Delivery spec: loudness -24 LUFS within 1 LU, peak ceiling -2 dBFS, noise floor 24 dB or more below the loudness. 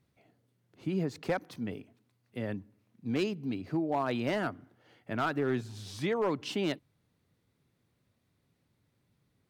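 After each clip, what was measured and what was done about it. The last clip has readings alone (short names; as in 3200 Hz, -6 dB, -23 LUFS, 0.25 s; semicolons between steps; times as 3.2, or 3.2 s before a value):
clipped 0.4%; flat tops at -22.5 dBFS; loudness -34.0 LUFS; peak -22.5 dBFS; loudness target -24.0 LUFS
-> clip repair -22.5 dBFS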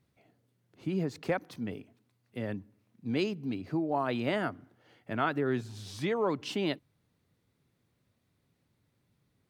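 clipped 0.0%; loudness -33.5 LUFS; peak -15.5 dBFS; loudness target -24.0 LUFS
-> gain +9.5 dB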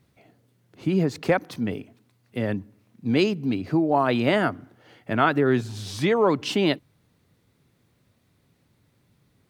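loudness -24.0 LUFS; peak -6.0 dBFS; noise floor -67 dBFS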